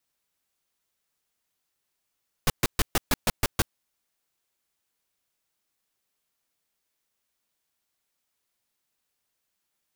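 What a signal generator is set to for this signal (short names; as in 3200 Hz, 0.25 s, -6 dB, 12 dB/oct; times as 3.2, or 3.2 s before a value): noise bursts pink, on 0.03 s, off 0.13 s, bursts 8, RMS -21 dBFS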